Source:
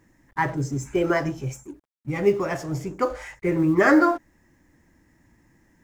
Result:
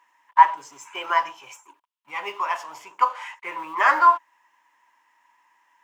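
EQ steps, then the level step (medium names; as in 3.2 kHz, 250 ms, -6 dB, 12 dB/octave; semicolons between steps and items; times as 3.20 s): resonant high-pass 980 Hz, resonance Q 11; peaking EQ 2.9 kHz +13.5 dB 0.71 oct; -5.5 dB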